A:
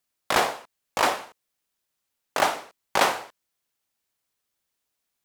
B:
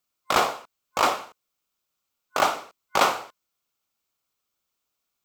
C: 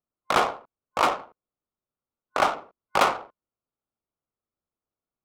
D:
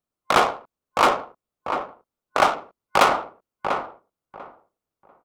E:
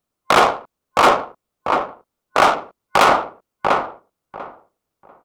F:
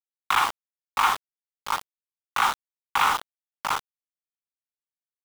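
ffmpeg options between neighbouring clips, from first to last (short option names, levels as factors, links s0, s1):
-af "superequalizer=10b=1.58:11b=0.562:16b=0.562"
-af "adynamicsmooth=sensitivity=2:basefreq=860"
-filter_complex "[0:a]asplit=2[s0][s1];[s1]adelay=693,lowpass=f=1400:p=1,volume=0.501,asplit=2[s2][s3];[s3]adelay=693,lowpass=f=1400:p=1,volume=0.2,asplit=2[s4][s5];[s5]adelay=693,lowpass=f=1400:p=1,volume=0.2[s6];[s0][s2][s4][s6]amix=inputs=4:normalize=0,volume=1.58"
-af "alimiter=limit=0.316:level=0:latency=1:release=16,volume=2.37"
-af "asuperpass=centerf=1800:order=20:qfactor=0.57,aeval=exprs='val(0)*gte(abs(val(0)),0.133)':c=same,volume=0.473"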